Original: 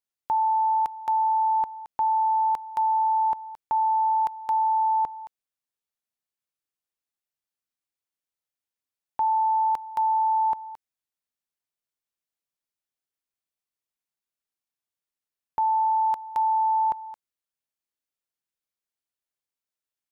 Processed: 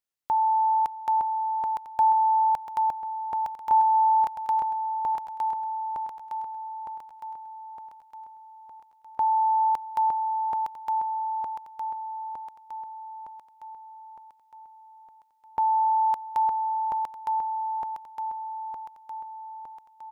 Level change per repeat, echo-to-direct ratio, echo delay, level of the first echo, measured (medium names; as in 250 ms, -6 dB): -5.5 dB, -1.5 dB, 911 ms, -3.0 dB